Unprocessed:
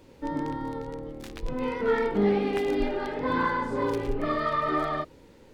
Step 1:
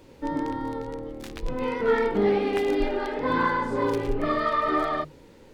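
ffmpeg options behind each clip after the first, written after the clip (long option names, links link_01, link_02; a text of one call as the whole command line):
ffmpeg -i in.wav -af "bandreject=frequency=50:width_type=h:width=6,bandreject=frequency=100:width_type=h:width=6,bandreject=frequency=150:width_type=h:width=6,bandreject=frequency=200:width_type=h:width=6,bandreject=frequency=250:width_type=h:width=6,volume=2.5dB" out.wav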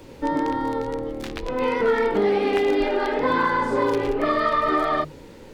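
ffmpeg -i in.wav -filter_complex "[0:a]acrossover=split=290|5300[link_01][link_02][link_03];[link_01]acompressor=threshold=-41dB:ratio=4[link_04];[link_02]acompressor=threshold=-26dB:ratio=4[link_05];[link_03]acompressor=threshold=-58dB:ratio=4[link_06];[link_04][link_05][link_06]amix=inputs=3:normalize=0,volume=7.5dB" out.wav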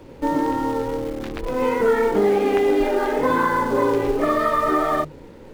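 ffmpeg -i in.wav -filter_complex "[0:a]highshelf=frequency=2800:gain=-11,asplit=2[link_01][link_02];[link_02]acrusher=bits=6:dc=4:mix=0:aa=0.000001,volume=-8.5dB[link_03];[link_01][link_03]amix=inputs=2:normalize=0" out.wav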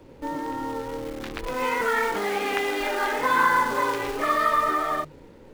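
ffmpeg -i in.wav -filter_complex "[0:a]acrossover=split=950[link_01][link_02];[link_01]alimiter=limit=-18.5dB:level=0:latency=1:release=137[link_03];[link_02]dynaudnorm=framelen=280:gausssize=9:maxgain=11.5dB[link_04];[link_03][link_04]amix=inputs=2:normalize=0,volume=-6dB" out.wav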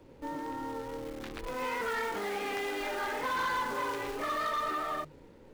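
ffmpeg -i in.wav -af "asoftclip=type=tanh:threshold=-21.5dB,volume=-6.5dB" out.wav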